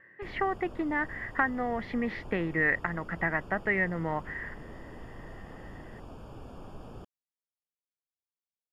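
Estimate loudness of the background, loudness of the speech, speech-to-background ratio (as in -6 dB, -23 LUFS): -47.5 LUFS, -30.5 LUFS, 17.0 dB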